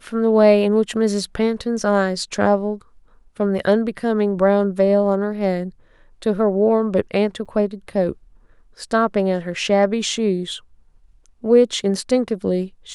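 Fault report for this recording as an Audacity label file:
7.450000	7.460000	drop-out 6.3 ms

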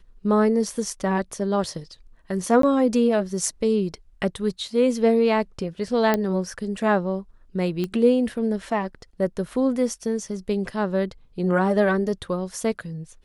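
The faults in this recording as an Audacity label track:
2.620000	2.630000	drop-out 13 ms
6.140000	6.140000	click −8 dBFS
7.840000	7.840000	click −15 dBFS

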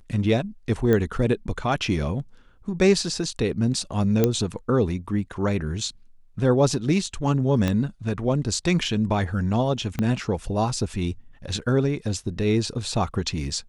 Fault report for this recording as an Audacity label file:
0.930000	0.930000	click −11 dBFS
4.240000	4.240000	click −6 dBFS
7.680000	7.680000	click −11 dBFS
9.990000	9.990000	click −13 dBFS

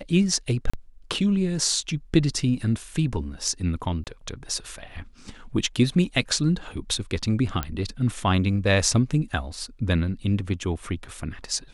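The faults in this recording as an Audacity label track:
0.700000	0.730000	drop-out 35 ms
4.040000	4.070000	drop-out 28 ms
7.630000	7.630000	click −12 dBFS

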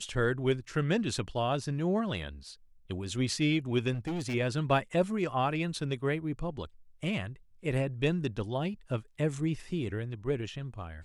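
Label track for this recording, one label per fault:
3.930000	4.350000	clipping −30.5 dBFS

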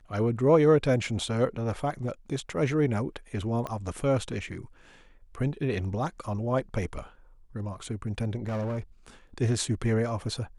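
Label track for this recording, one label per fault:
3.670000	3.670000	click −21 dBFS
8.460000	8.800000	clipping −27.5 dBFS

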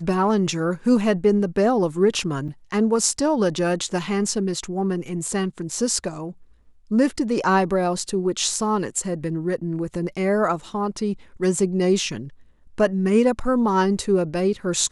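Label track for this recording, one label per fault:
2.480000	2.480000	drop-out 4.9 ms

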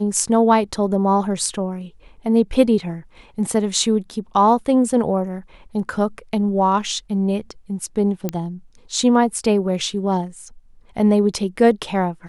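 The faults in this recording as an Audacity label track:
8.290000	8.290000	click −9 dBFS

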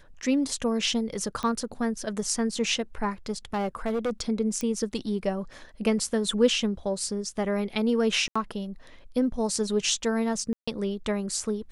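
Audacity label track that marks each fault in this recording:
1.430000	1.430000	click −19 dBFS
3.530000	4.110000	clipping −23.5 dBFS
4.610000	4.610000	click −17 dBFS
8.280000	8.360000	drop-out 75 ms
10.530000	10.680000	drop-out 145 ms

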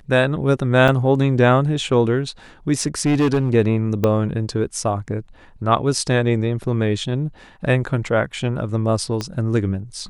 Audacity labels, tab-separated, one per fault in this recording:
0.880000	0.880000	drop-out 3.7 ms
2.800000	3.550000	clipping −13 dBFS
4.040000	4.040000	click −7 dBFS
9.210000	9.210000	click −12 dBFS

